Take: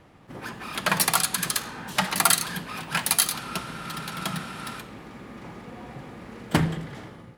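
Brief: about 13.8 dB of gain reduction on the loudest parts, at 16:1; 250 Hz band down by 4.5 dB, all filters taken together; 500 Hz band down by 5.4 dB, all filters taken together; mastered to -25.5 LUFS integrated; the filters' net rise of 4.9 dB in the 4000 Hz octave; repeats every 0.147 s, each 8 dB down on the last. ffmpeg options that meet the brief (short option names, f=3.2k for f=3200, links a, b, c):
-af "equalizer=f=250:t=o:g=-6,equalizer=f=500:t=o:g=-6,equalizer=f=4k:t=o:g=6,acompressor=threshold=-27dB:ratio=16,aecho=1:1:147|294|441|588|735:0.398|0.159|0.0637|0.0255|0.0102,volume=7dB"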